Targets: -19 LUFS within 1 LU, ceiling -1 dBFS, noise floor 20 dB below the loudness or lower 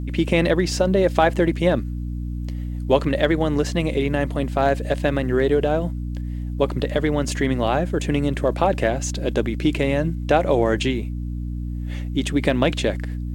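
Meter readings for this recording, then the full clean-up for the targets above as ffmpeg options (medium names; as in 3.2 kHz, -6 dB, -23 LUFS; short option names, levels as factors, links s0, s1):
hum 60 Hz; highest harmonic 300 Hz; hum level -25 dBFS; loudness -22.0 LUFS; peak level -1.5 dBFS; loudness target -19.0 LUFS
-> -af "bandreject=f=60:t=h:w=4,bandreject=f=120:t=h:w=4,bandreject=f=180:t=h:w=4,bandreject=f=240:t=h:w=4,bandreject=f=300:t=h:w=4"
-af "volume=1.41,alimiter=limit=0.891:level=0:latency=1"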